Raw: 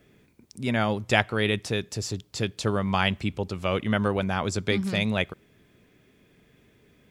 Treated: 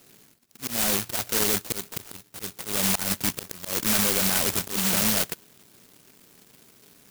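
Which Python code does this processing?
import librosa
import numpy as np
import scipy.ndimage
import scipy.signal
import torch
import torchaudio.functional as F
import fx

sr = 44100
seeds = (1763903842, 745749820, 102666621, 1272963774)

p1 = scipy.ndimage.median_filter(x, 25, mode='constant')
p2 = fx.level_steps(p1, sr, step_db=11)
p3 = p1 + (p2 * librosa.db_to_amplitude(-2.5))
p4 = scipy.signal.sosfilt(scipy.signal.butter(2, 140.0, 'highpass', fs=sr, output='sos'), p3)
p5 = fx.high_shelf(p4, sr, hz=2400.0, db=7.0)
p6 = fx.small_body(p5, sr, hz=(1500.0, 3400.0), ring_ms=45, db=16)
p7 = fx.auto_swell(p6, sr, attack_ms=194.0)
p8 = np.clip(10.0 ** (23.0 / 20.0) * p7, -1.0, 1.0) / 10.0 ** (23.0 / 20.0)
p9 = (np.kron(p8[::6], np.eye(6)[0]) * 6)[:len(p8)]
p10 = fx.clock_jitter(p9, sr, seeds[0], jitter_ms=0.14)
y = p10 * librosa.db_to_amplitude(-2.0)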